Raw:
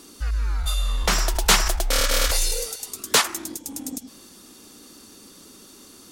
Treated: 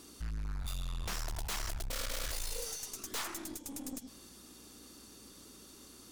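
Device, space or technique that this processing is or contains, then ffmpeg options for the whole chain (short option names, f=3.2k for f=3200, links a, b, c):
valve amplifier with mains hum: -filter_complex "[0:a]asettb=1/sr,asplit=3[a][b][c];[a]atrim=end=2.664[d];[b]atrim=start=2.66:end=3.07,asetpts=PTS-STARTPTS,afade=t=in:d=0.004:c=qsin,afade=t=out:st=0.406:d=0.004:c=qsin,equalizer=f=6k:w=4.9:g=9.5[e];[c]atrim=start=3.066[f];[d][e]acrossfade=d=0.004:c1=hsin:c2=qsin[g];[g][f]acrossfade=d=0.004:c1=qsin:c2=hsin,aeval=exprs='(tanh(31.6*val(0)+0.45)-tanh(0.45))/31.6':c=same,aeval=exprs='val(0)+0.001*(sin(2*PI*60*n/s)+sin(2*PI*2*60*n/s)/2+sin(2*PI*3*60*n/s)/3+sin(2*PI*4*60*n/s)/4+sin(2*PI*5*60*n/s)/5)':c=same,volume=-6dB"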